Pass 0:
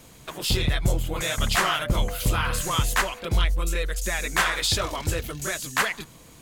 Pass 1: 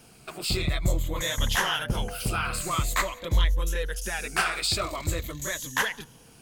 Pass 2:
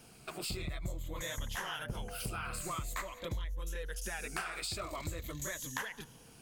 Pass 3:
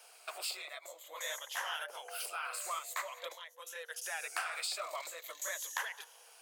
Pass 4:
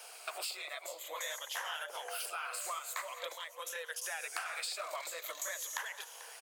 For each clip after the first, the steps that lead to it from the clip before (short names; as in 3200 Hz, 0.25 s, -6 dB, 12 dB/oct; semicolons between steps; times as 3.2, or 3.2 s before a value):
moving spectral ripple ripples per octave 1.1, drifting -0.47 Hz, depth 9 dB; gain -4 dB
dynamic EQ 3900 Hz, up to -4 dB, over -40 dBFS, Q 1.3; compressor 6:1, threshold -32 dBFS, peak gain reduction 14 dB; gain -4 dB
steep high-pass 540 Hz 36 dB/oct; gain +1.5 dB
compressor 3:1, threshold -47 dBFS, peak gain reduction 11.5 dB; feedback echo 0.441 s, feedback 31%, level -16 dB; gain +7.5 dB